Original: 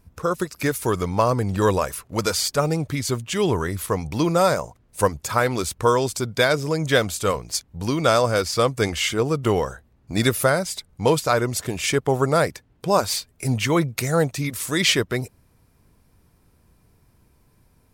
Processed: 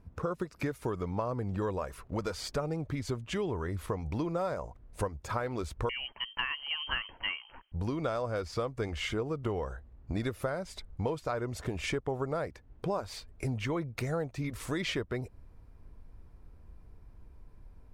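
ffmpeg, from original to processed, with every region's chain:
-filter_complex "[0:a]asettb=1/sr,asplit=3[s0][s1][s2];[s0]atrim=end=5.894[s3];[s1]atrim=start=5.89:end=7.72,asetpts=PTS-STARTPTS,afade=t=in:d=0.004:c=qsin,afade=t=out:st=1.826:d=0.004:c=qsin,highpass=200,lowpass=f=2800:t=q:w=0.5098,lowpass=f=2800:t=q:w=0.6013,lowpass=f=2800:t=q:w=0.9,lowpass=f=2800:t=q:w=2.563,afreqshift=-3300[s4];[s2]atrim=start=7.716[s5];[s3][s4]acrossfade=d=0.004:c1=hsin:c2=qsin[s6];[s6][s5]acrossfade=d=0.004:c1=qsin:c2=hsin,lowpass=f=1200:p=1,asubboost=boost=5:cutoff=58,acompressor=threshold=0.0282:ratio=5"

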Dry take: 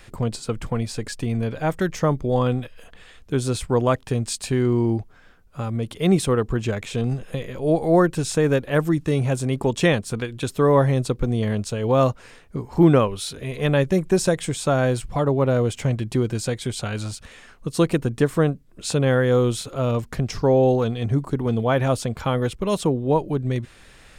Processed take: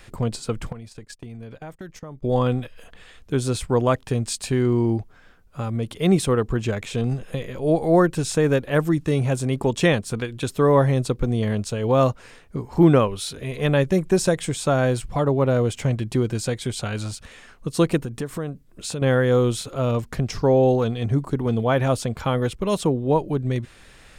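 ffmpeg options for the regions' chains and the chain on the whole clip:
-filter_complex "[0:a]asettb=1/sr,asplit=3[s0][s1][s2];[s0]atrim=end=0.724[s3];[s1]atrim=start=0.72:end=2.23,asetpts=PTS-STARTPTS,afade=t=in:d=0.004:c=qsin,afade=t=out:st=1.506:d=0.004:c=qsin,agate=range=0.0631:threshold=0.0251:ratio=16:release=100:detection=peak,acompressor=threshold=0.0178:ratio=5:attack=3.2:release=140:knee=1:detection=peak[s4];[s2]atrim=start=2.226[s5];[s3][s4]acrossfade=d=0.004:c1=hsin:c2=qsin[s6];[s6][s5]acrossfade=d=0.004:c1=qsin:c2=hsin,asettb=1/sr,asplit=3[s7][s8][s9];[s7]atrim=end=17.984[s10];[s8]atrim=start=17.98:end=19.02,asetpts=PTS-STARTPTS,afade=t=in:d=0.004:c=qsin,afade=t=out:st=1.036:d=0.004:c=qsin,highshelf=f=9500:g=4,acompressor=threshold=0.0398:ratio=2.5:attack=3.2:release=140:knee=1:detection=peak[s11];[s9]atrim=start=19.016[s12];[s10][s11]acrossfade=d=0.004:c1=hsin:c2=qsin[s13];[s13][s12]acrossfade=d=0.004:c1=qsin:c2=hsin"

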